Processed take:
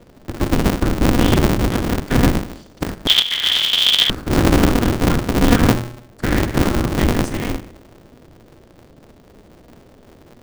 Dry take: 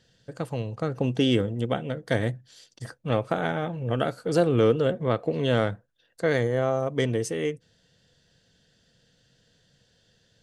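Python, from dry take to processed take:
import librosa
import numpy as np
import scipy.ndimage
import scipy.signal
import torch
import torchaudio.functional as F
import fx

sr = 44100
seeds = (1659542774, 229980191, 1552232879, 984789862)

y = scipy.signal.sosfilt(scipy.signal.cheby2(4, 50, [330.0, 740.0], 'bandstop', fs=sr, output='sos'), x)
y = fx.hum_notches(y, sr, base_hz=60, count=3)
y = fx.dmg_buzz(y, sr, base_hz=120.0, harmonics=4, level_db=-59.0, tilt_db=-1, odd_only=False)
y = fx.low_shelf(y, sr, hz=85.0, db=10.0)
y = fx.leveller(y, sr, passes=1)
y = fx.tilt_shelf(y, sr, db=7.5, hz=1300.0)
y = fx.whisperise(y, sr, seeds[0])
y = fx.rev_schroeder(y, sr, rt60_s=0.63, comb_ms=27, drr_db=8.5)
y = fx.freq_invert(y, sr, carrier_hz=3400, at=(3.07, 4.1))
y = y * np.sign(np.sin(2.0 * np.pi * 120.0 * np.arange(len(y)) / sr))
y = F.gain(torch.from_numpy(y), 3.0).numpy()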